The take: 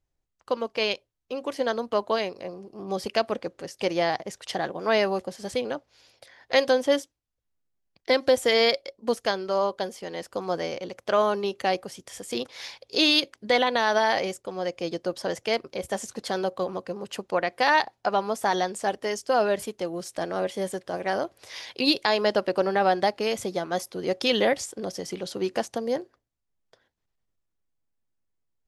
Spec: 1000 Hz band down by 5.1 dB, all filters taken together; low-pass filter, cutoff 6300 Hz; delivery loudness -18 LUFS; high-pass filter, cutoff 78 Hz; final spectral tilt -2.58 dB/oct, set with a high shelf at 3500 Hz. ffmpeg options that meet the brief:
-af "highpass=78,lowpass=6.3k,equalizer=f=1k:t=o:g=-6.5,highshelf=f=3.5k:g=-9,volume=11dB"

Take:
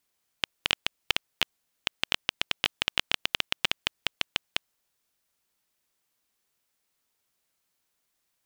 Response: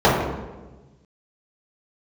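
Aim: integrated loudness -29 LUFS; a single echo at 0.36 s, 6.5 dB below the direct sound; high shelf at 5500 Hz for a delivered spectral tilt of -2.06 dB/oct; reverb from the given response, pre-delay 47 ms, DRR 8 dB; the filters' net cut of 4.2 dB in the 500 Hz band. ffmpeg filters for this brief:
-filter_complex "[0:a]equalizer=f=500:t=o:g=-5.5,highshelf=f=5.5k:g=3.5,aecho=1:1:360:0.473,asplit=2[a][b];[1:a]atrim=start_sample=2205,adelay=47[c];[b][c]afir=irnorm=-1:irlink=0,volume=-34.5dB[d];[a][d]amix=inputs=2:normalize=0,volume=-0.5dB"

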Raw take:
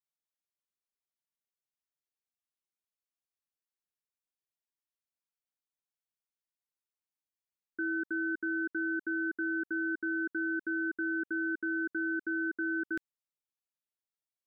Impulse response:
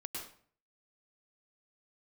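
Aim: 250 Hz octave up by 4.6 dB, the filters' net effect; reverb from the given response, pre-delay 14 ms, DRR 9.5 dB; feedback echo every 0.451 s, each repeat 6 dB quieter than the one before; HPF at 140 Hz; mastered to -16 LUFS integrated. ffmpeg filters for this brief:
-filter_complex "[0:a]highpass=140,equalizer=f=250:t=o:g=7.5,aecho=1:1:451|902|1353|1804|2255|2706:0.501|0.251|0.125|0.0626|0.0313|0.0157,asplit=2[a][b];[1:a]atrim=start_sample=2205,adelay=14[c];[b][c]afir=irnorm=-1:irlink=0,volume=-8.5dB[d];[a][d]amix=inputs=2:normalize=0,volume=11.5dB"

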